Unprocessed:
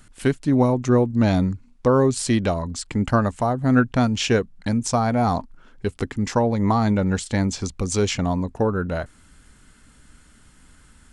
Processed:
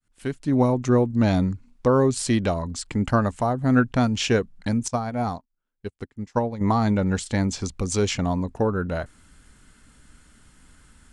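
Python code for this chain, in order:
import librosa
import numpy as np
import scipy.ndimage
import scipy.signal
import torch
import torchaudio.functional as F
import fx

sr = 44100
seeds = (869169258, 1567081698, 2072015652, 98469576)

y = fx.fade_in_head(x, sr, length_s=0.61)
y = fx.upward_expand(y, sr, threshold_db=-38.0, expansion=2.5, at=(4.88, 6.61))
y = F.gain(torch.from_numpy(y), -1.5).numpy()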